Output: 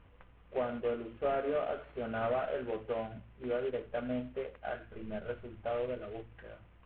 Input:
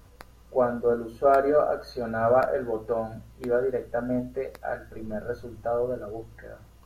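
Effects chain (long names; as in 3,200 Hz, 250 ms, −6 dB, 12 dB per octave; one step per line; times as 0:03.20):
variable-slope delta modulation 16 kbit/s
downward compressor 2.5 to 1, threshold −24 dBFS, peak gain reduction 5.5 dB
level −6.5 dB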